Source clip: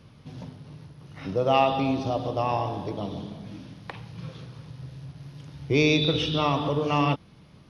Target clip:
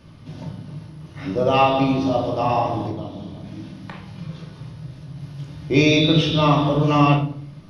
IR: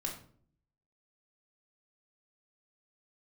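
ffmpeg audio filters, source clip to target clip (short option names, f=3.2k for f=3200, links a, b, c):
-filter_complex "[0:a]asettb=1/sr,asplit=3[a][b][c];[a]atrim=end=2.874[d];[b]atrim=start=2.87:end=5.17,asetpts=PTS-STARTPTS,afade=t=in:d=0.004:c=qsin,afade=t=out:st=2.296:d=0.004:c=qsin,acompressor=threshold=-39dB:ratio=2.5[e];[c]atrim=start=5.166[f];[d][e]acrossfade=d=0.004:c1=hsin:c2=qsin[g];[g][f]acrossfade=d=0.004:c1=qsin:c2=hsin[h];[1:a]atrim=start_sample=2205[i];[h][i]afir=irnorm=-1:irlink=0,volume=4.5dB"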